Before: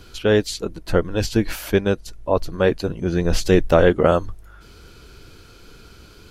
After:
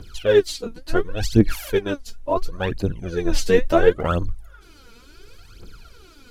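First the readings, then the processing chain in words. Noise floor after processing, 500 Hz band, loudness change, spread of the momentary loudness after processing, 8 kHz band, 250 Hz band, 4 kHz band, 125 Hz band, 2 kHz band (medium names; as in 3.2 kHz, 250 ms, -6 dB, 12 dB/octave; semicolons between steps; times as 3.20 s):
-48 dBFS, -1.5 dB, -1.5 dB, 12 LU, -1.5 dB, -2.0 dB, -2.0 dB, -2.0 dB, -2.0 dB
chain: phaser 0.71 Hz, delay 4.5 ms, feedback 78%; trim -6 dB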